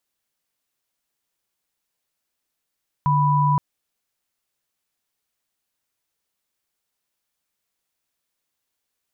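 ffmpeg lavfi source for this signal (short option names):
-f lavfi -i "aevalsrc='0.126*(sin(2*PI*146.83*t)+sin(2*PI*987.77*t))':d=0.52:s=44100"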